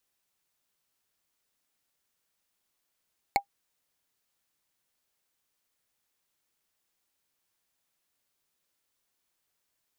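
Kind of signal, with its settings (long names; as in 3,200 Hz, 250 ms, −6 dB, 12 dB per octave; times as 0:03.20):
struck wood, lowest mode 801 Hz, decay 0.09 s, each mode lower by 3 dB, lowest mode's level −15 dB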